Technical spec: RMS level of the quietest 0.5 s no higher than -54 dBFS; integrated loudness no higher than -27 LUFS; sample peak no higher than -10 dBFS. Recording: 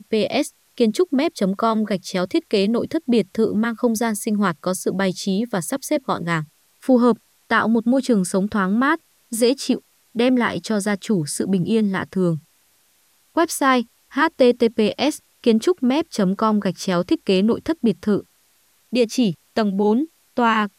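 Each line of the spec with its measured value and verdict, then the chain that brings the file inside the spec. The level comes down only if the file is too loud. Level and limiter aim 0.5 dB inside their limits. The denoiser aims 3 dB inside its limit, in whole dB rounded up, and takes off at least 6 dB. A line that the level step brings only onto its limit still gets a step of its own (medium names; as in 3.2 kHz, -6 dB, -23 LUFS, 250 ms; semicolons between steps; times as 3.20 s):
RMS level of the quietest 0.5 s -60 dBFS: pass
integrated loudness -20.5 LUFS: fail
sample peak -4.5 dBFS: fail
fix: trim -7 dB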